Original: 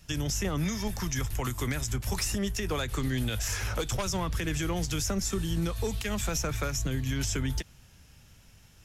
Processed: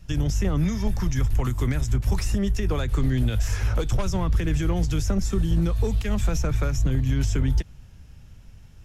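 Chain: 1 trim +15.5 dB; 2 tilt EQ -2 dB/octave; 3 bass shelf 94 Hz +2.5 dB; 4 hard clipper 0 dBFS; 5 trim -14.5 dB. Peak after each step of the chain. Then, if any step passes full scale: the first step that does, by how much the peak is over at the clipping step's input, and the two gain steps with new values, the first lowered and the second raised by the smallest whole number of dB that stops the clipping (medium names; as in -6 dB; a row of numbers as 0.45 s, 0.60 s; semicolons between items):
-4.5 dBFS, +1.5 dBFS, +3.0 dBFS, 0.0 dBFS, -14.5 dBFS; step 2, 3.0 dB; step 1 +12.5 dB, step 5 -11.5 dB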